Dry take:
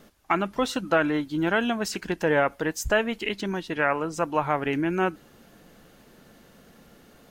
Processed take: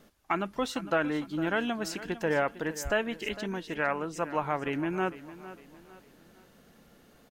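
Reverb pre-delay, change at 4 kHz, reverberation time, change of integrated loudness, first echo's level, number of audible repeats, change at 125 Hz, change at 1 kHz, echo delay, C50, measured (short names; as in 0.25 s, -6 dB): none, -5.5 dB, none, -5.5 dB, -15.5 dB, 3, -5.5 dB, -5.5 dB, 0.455 s, none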